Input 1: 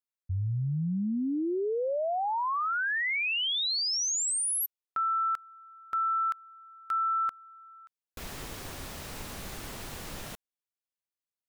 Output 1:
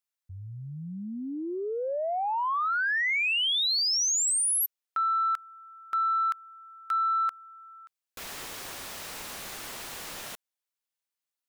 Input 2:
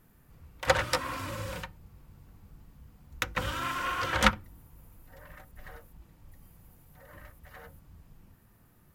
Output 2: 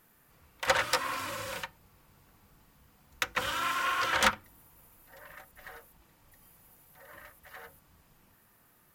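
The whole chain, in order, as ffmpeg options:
-filter_complex "[0:a]asplit=2[a][b];[b]highpass=f=720:p=1,volume=17dB,asoftclip=type=tanh:threshold=-4dB[c];[a][c]amix=inputs=2:normalize=0,lowpass=f=3.8k:p=1,volume=-6dB,crystalizer=i=1.5:c=0,volume=-8.5dB"

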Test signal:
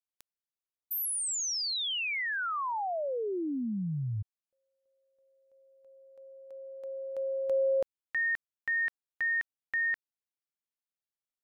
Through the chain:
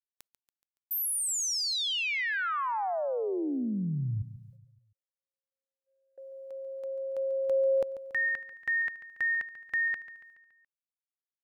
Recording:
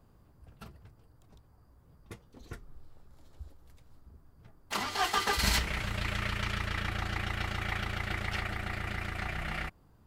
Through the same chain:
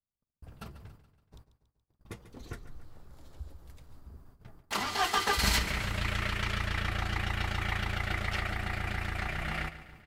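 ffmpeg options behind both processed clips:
-filter_complex "[0:a]agate=range=-44dB:threshold=-54dB:ratio=16:release=265:detection=rms,asplit=2[a][b];[b]acompressor=threshold=-43dB:ratio=6:attack=0.9:release=279:detection=rms,volume=-2dB[c];[a][c]amix=inputs=2:normalize=0,aecho=1:1:141|282|423|564|705:0.2|0.102|0.0519|0.0265|0.0135"

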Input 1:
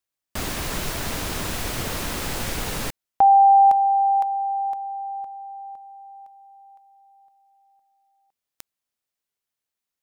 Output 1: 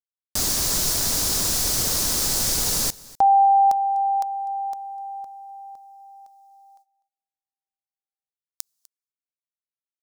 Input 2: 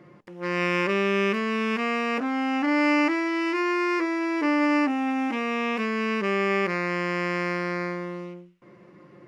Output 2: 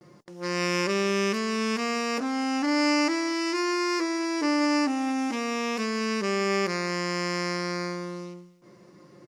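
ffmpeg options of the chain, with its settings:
-filter_complex "[0:a]agate=range=-39dB:threshold=-50dB:ratio=16:release=279:detection=rms,highshelf=f=3.7k:t=q:w=1.5:g=11.5,asplit=2[a][b];[b]aecho=0:1:249:0.0841[c];[a][c]amix=inputs=2:normalize=0,volume=-1.5dB"

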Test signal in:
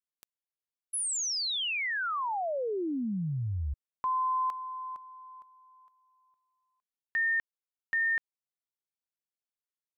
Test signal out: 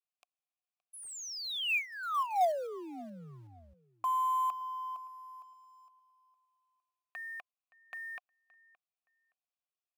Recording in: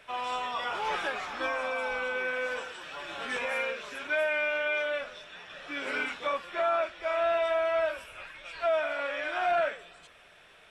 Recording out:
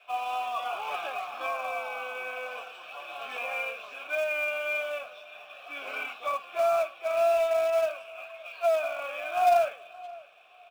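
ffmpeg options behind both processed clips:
-filter_complex "[0:a]adynamicequalizer=threshold=0.00355:dfrequency=160:dqfactor=0.88:tfrequency=160:tqfactor=0.88:attack=5:release=100:ratio=0.4:range=2.5:mode=boostabove:tftype=bell,asplit=3[a][b][c];[a]bandpass=f=730:t=q:w=8,volume=0dB[d];[b]bandpass=f=1.09k:t=q:w=8,volume=-6dB[e];[c]bandpass=f=2.44k:t=q:w=8,volume=-9dB[f];[d][e][f]amix=inputs=3:normalize=0,highshelf=f=2.3k:g=11.5,asplit=2[g][h];[h]acrusher=bits=2:mode=log:mix=0:aa=0.000001,volume=-9dB[i];[g][i]amix=inputs=2:normalize=0,asplit=2[j][k];[k]adelay=570,lowpass=f=2.9k:p=1,volume=-21dB,asplit=2[l][m];[m]adelay=570,lowpass=f=2.9k:p=1,volume=0.23[n];[j][l][n]amix=inputs=3:normalize=0,volume=3.5dB"

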